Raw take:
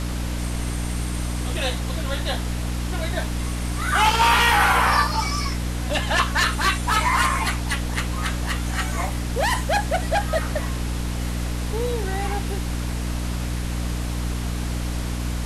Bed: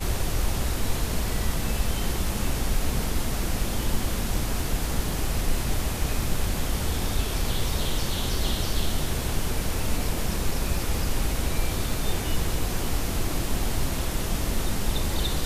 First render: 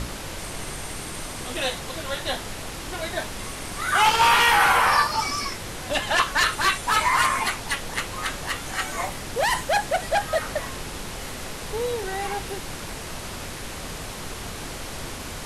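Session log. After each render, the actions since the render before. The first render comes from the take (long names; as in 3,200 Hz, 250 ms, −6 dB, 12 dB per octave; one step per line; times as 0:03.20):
mains-hum notches 60/120/180/240/300 Hz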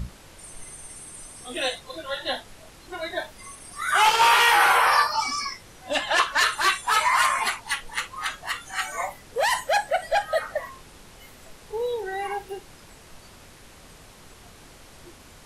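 noise reduction from a noise print 14 dB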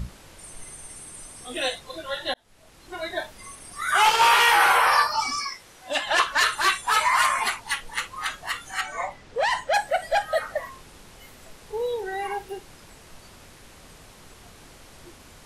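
0:02.34–0:03.00: fade in
0:05.41–0:06.07: low-shelf EQ 270 Hz −10.5 dB
0:08.81–0:09.74: high-frequency loss of the air 86 metres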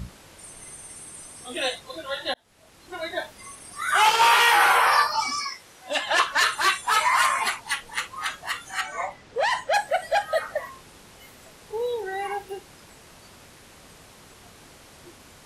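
high-pass filter 78 Hz 6 dB per octave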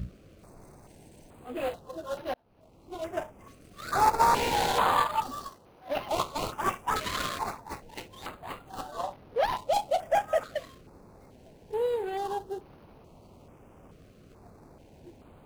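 running median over 25 samples
notch on a step sequencer 2.3 Hz 900–7,600 Hz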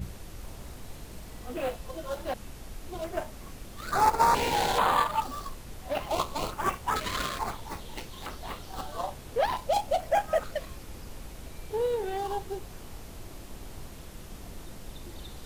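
mix in bed −17.5 dB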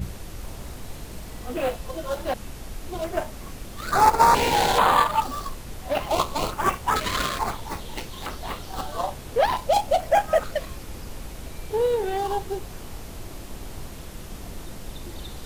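level +6 dB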